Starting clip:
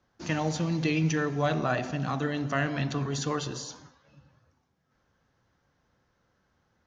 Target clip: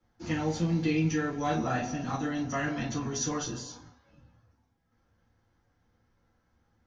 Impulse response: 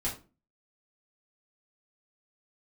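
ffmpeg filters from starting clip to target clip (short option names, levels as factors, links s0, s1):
-filter_complex "[0:a]asettb=1/sr,asplit=3[s0][s1][s2];[s0]atrim=end=1.384[s3];[s1]atrim=start=1.38:end=3.54,asetpts=PTS-STARTPTS,afade=t=in:d=0.004:c=qsin,afade=t=out:st=2.156:d=0.004:c=qsin,equalizer=f=5900:t=o:w=0.25:g=11.5[s4];[s2]atrim=start=3.536[s5];[s3][s4]acrossfade=d=0.004:c1=hsin:c2=qsin[s6];[s6][s5]acrossfade=d=0.004:c1=qsin:c2=hsin[s7];[1:a]atrim=start_sample=2205,atrim=end_sample=3087[s8];[s7][s8]afir=irnorm=-1:irlink=0,volume=0.447"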